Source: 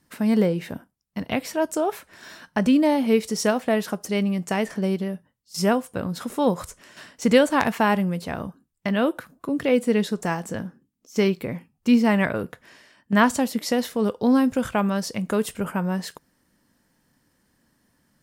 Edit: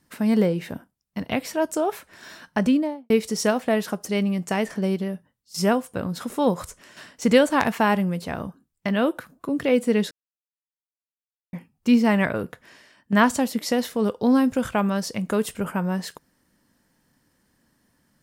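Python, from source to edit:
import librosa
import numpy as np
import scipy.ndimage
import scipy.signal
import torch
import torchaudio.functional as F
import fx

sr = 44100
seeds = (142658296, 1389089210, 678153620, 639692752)

y = fx.studio_fade_out(x, sr, start_s=2.6, length_s=0.5)
y = fx.edit(y, sr, fx.silence(start_s=10.11, length_s=1.42), tone=tone)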